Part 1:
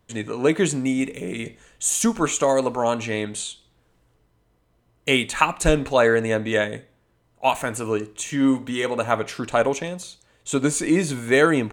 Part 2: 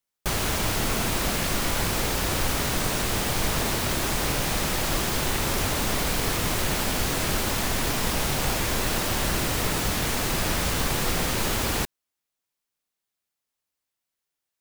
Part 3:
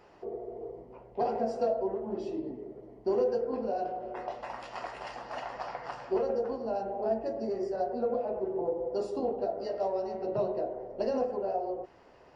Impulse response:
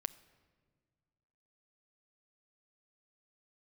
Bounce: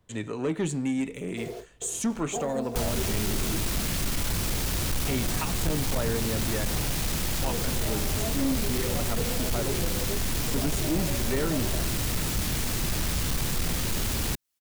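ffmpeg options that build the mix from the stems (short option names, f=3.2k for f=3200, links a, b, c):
-filter_complex "[0:a]volume=-4.5dB,asplit=2[a][b];[1:a]highshelf=f=2.3k:g=9,adelay=2500,volume=-1.5dB[c];[2:a]acrusher=bits=7:mix=0:aa=0.000001,adelay=1150,volume=1.5dB[d];[b]apad=whole_len=595370[e];[d][e]sidechaingate=range=-33dB:threshold=-50dB:ratio=16:detection=peak[f];[a][c][f]amix=inputs=3:normalize=0,lowshelf=f=180:g=4.5,acrossover=split=330[g][h];[h]acompressor=threshold=-31dB:ratio=2.5[i];[g][i]amix=inputs=2:normalize=0,asoftclip=type=tanh:threshold=-20.5dB"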